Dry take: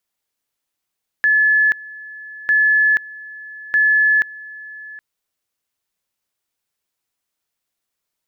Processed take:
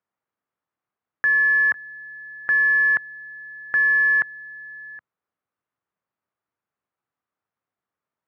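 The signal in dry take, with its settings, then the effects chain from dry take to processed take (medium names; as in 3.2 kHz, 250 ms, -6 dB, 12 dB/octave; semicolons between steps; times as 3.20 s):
two-level tone 1.72 kHz -11 dBFS, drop 21 dB, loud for 0.48 s, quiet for 0.77 s, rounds 3
block-companded coder 3-bit; Chebyshev band-pass 100–1400 Hz, order 2; peaking EQ 1.2 kHz +3 dB 0.22 oct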